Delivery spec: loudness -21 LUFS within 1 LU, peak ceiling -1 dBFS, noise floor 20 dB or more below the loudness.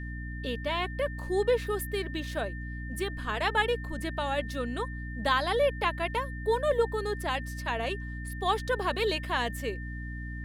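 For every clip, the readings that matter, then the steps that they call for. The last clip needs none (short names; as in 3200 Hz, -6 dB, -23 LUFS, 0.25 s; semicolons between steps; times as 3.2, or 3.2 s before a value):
hum 60 Hz; harmonics up to 300 Hz; hum level -35 dBFS; steady tone 1800 Hz; tone level -43 dBFS; loudness -30.5 LUFS; peak -12.5 dBFS; loudness target -21.0 LUFS
-> notches 60/120/180/240/300 Hz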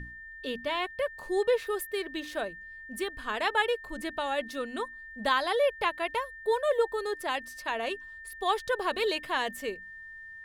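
hum none; steady tone 1800 Hz; tone level -43 dBFS
-> notch 1800 Hz, Q 30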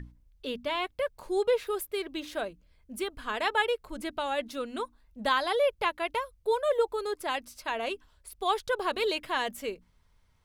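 steady tone none; loudness -31.0 LUFS; peak -13.0 dBFS; loudness target -21.0 LUFS
-> gain +10 dB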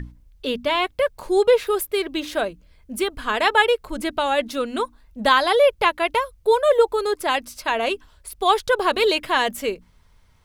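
loudness -21.0 LUFS; peak -3.0 dBFS; noise floor -55 dBFS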